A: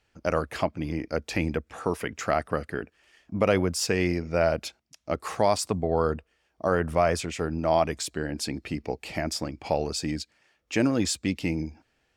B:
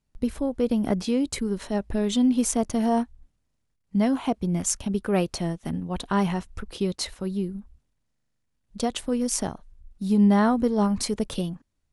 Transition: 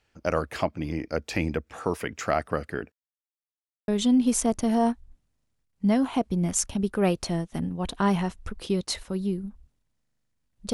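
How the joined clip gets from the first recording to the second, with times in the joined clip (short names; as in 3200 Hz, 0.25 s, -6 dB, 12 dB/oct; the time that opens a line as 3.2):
A
2.92–3.88 mute
3.88 switch to B from 1.99 s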